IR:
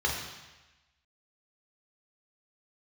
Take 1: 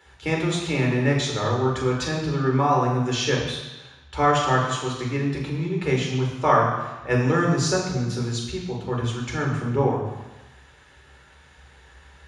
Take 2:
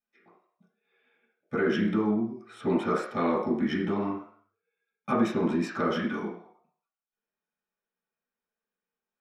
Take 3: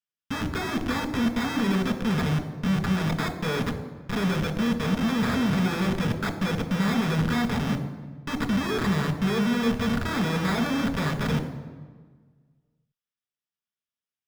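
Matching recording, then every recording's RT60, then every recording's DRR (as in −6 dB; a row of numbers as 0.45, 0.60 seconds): 1; 1.1, 0.60, 1.5 seconds; −2.5, −10.0, 5.5 decibels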